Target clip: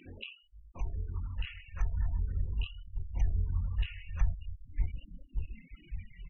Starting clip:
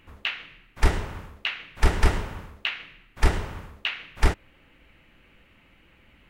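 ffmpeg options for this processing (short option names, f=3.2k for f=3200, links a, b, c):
-filter_complex "[0:a]afftfilt=real='re':imag='-im':win_size=2048:overlap=0.75,acrossover=split=160[a][b];[b]acompressor=mode=upward:threshold=-40dB:ratio=2.5[c];[a][c]amix=inputs=2:normalize=0,equalizer=f=6.1k:t=o:w=0.22:g=8,asplit=2[d][e];[e]aecho=0:1:567|1134|1701|2268:0.106|0.054|0.0276|0.0141[f];[d][f]amix=inputs=2:normalize=0,alimiter=limit=-22.5dB:level=0:latency=1:release=226,acompressor=threshold=-40dB:ratio=20,afftfilt=real='re*gte(hypot(re,im),0.00891)':imag='im*gte(hypot(re,im),0.00891)':win_size=1024:overlap=0.75,asubboost=boost=11.5:cutoff=100,afftfilt=real='re*(1-between(b*sr/1024,240*pow(2100/240,0.5+0.5*sin(2*PI*0.43*pts/sr))/1.41,240*pow(2100/240,0.5+0.5*sin(2*PI*0.43*pts/sr))*1.41))':imag='im*(1-between(b*sr/1024,240*pow(2100/240,0.5+0.5*sin(2*PI*0.43*pts/sr))/1.41,240*pow(2100/240,0.5+0.5*sin(2*PI*0.43*pts/sr))*1.41))':win_size=1024:overlap=0.75,volume=1dB"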